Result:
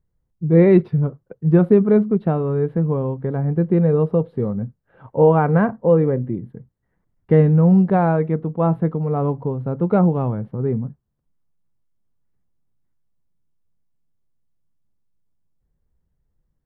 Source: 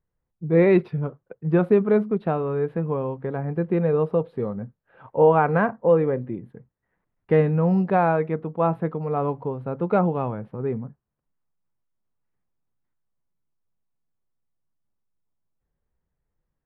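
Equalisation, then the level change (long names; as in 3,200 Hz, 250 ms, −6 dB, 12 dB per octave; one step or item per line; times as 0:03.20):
low-shelf EQ 360 Hz +12 dB
notch filter 2,500 Hz, Q 14
−2.0 dB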